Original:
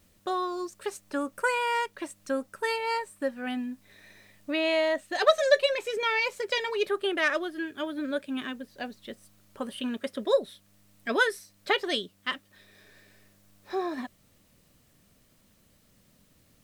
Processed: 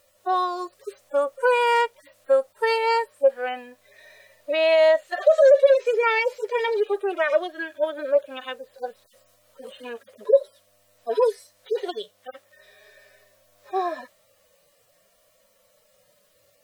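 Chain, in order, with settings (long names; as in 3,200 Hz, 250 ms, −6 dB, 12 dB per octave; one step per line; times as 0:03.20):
harmonic-percussive split with one part muted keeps harmonic
brickwall limiter −20.5 dBFS, peak gain reduction 9 dB
low shelf with overshoot 360 Hz −12.5 dB, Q 3
level +6 dB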